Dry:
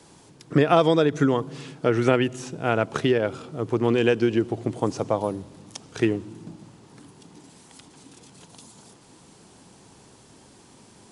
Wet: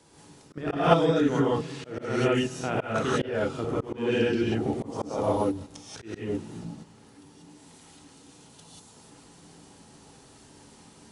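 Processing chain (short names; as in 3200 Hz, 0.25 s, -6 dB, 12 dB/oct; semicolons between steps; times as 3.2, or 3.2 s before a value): level quantiser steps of 15 dB; non-linear reverb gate 0.21 s rising, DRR -7 dB; auto swell 0.211 s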